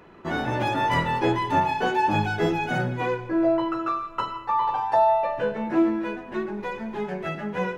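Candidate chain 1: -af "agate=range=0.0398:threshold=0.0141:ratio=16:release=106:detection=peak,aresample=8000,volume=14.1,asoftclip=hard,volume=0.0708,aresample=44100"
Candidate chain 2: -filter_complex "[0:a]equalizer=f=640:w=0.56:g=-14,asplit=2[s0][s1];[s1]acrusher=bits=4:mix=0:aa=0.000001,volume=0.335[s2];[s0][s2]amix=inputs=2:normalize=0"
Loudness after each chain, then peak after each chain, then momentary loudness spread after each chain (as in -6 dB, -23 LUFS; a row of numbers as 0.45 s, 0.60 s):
-27.5 LUFS, -31.0 LUFS; -20.0 dBFS, -14.0 dBFS; 6 LU, 10 LU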